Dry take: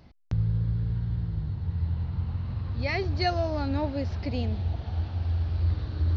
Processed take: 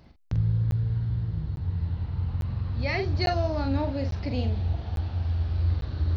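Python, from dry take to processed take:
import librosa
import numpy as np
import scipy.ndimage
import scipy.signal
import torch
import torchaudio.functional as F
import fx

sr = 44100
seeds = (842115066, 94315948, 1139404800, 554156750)

y = fx.doubler(x, sr, ms=44.0, db=-7)
y = fx.buffer_crackle(y, sr, first_s=0.71, period_s=0.85, block=512, kind='zero')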